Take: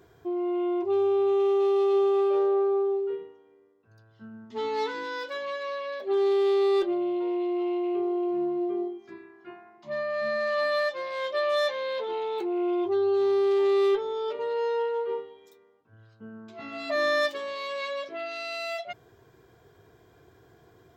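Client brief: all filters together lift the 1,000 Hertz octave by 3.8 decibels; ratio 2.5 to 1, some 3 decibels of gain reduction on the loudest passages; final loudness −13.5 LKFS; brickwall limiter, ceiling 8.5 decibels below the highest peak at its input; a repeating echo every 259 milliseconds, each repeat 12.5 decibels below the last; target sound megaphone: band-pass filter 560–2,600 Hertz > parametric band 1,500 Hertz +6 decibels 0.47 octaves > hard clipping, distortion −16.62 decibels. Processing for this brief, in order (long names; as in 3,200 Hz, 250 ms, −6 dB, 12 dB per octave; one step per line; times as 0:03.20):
parametric band 1,000 Hz +4 dB
downward compressor 2.5 to 1, threshold −25 dBFS
brickwall limiter −27.5 dBFS
band-pass filter 560–2,600 Hz
parametric band 1,500 Hz +6 dB 0.47 octaves
repeating echo 259 ms, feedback 24%, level −12.5 dB
hard clipping −32.5 dBFS
level +24.5 dB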